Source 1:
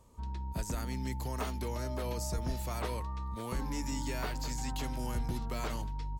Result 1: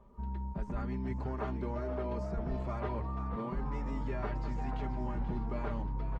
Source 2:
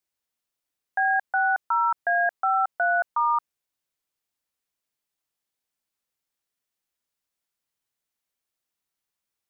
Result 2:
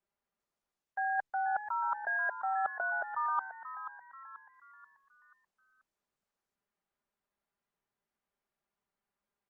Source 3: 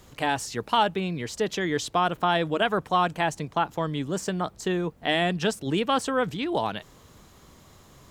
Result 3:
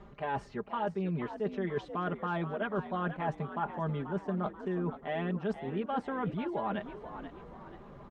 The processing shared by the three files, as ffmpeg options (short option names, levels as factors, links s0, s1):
-filter_complex "[0:a]lowpass=1500,aecho=1:1:5:0.8,areverse,acompressor=threshold=0.0224:ratio=6,areverse,asplit=6[s0][s1][s2][s3][s4][s5];[s1]adelay=484,afreqshift=66,volume=0.282[s6];[s2]adelay=968,afreqshift=132,volume=0.124[s7];[s3]adelay=1452,afreqshift=198,volume=0.0543[s8];[s4]adelay=1936,afreqshift=264,volume=0.024[s9];[s5]adelay=2420,afreqshift=330,volume=0.0106[s10];[s0][s6][s7][s8][s9][s10]amix=inputs=6:normalize=0,volume=1.19" -ar 48000 -c:a libopus -b:a 48k